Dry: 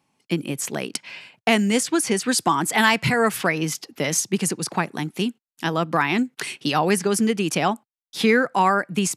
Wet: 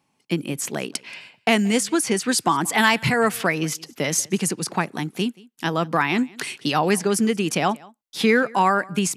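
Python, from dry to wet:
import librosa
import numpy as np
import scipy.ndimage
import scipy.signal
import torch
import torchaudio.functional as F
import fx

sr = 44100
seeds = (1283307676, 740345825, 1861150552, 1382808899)

y = x + 10.0 ** (-24.0 / 20.0) * np.pad(x, (int(179 * sr / 1000.0), 0))[:len(x)]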